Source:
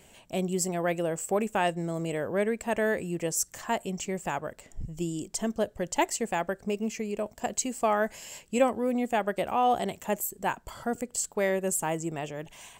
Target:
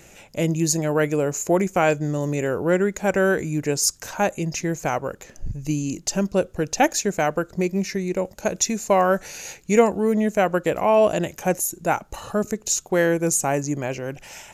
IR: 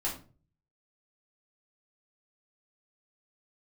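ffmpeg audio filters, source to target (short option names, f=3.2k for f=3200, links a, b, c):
-af "asetrate=38808,aresample=44100,volume=7.5dB"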